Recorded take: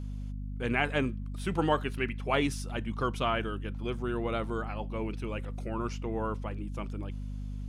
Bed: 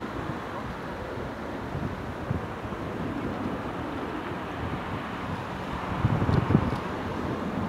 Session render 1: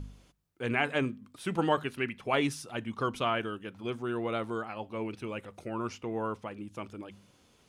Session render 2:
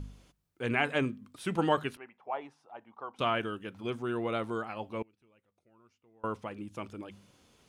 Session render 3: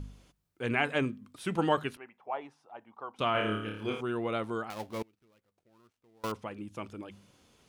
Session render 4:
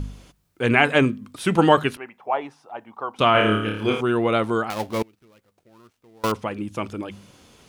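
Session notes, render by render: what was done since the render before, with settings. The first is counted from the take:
de-hum 50 Hz, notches 5
1.97–3.19 s: band-pass filter 810 Hz, Q 3.7; 5.02–6.24 s: inverted gate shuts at -41 dBFS, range -29 dB
3.32–4.01 s: flutter echo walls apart 4.8 m, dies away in 0.63 s; 4.70–6.32 s: dead-time distortion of 0.16 ms
trim +12 dB; peak limiter -2 dBFS, peak gain reduction 1 dB

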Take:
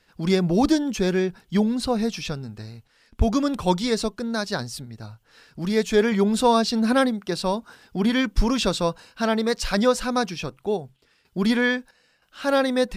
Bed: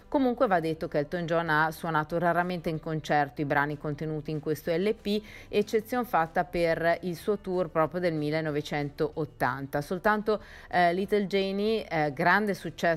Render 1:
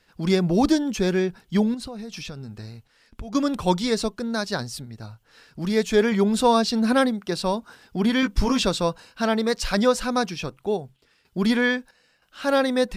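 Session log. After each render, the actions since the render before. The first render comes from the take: 1.74–3.35 s: compression 12:1, threshold -31 dBFS; 8.21–8.63 s: doubling 16 ms -5 dB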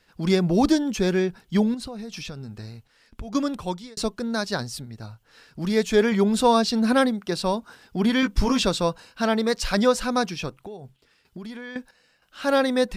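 3.28–3.97 s: fade out; 10.60–11.76 s: compression 8:1, threshold -34 dBFS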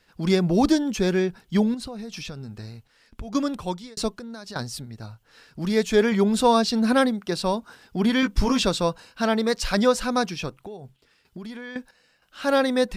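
4.16–4.56 s: compression 12:1, threshold -34 dBFS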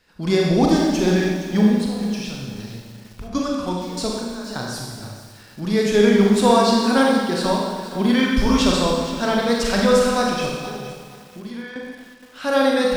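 Schroeder reverb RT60 1.4 s, combs from 30 ms, DRR -2 dB; bit-crushed delay 468 ms, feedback 35%, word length 6-bit, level -13 dB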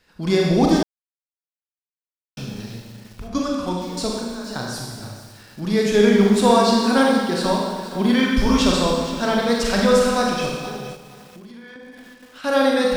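0.83–2.37 s: mute; 10.95–12.44 s: compression, threshold -37 dBFS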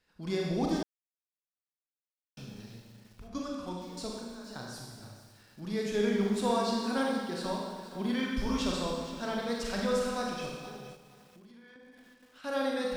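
trim -14 dB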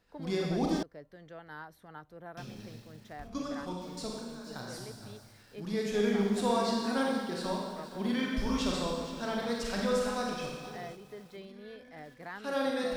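add bed -21 dB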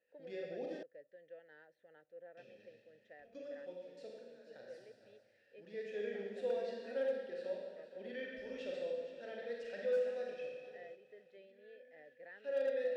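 vowel filter e; overload inside the chain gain 29 dB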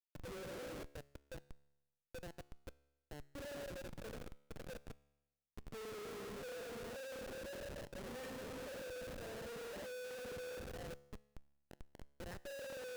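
Schmitt trigger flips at -49 dBFS; feedback comb 71 Hz, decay 0.94 s, harmonics all, mix 40%

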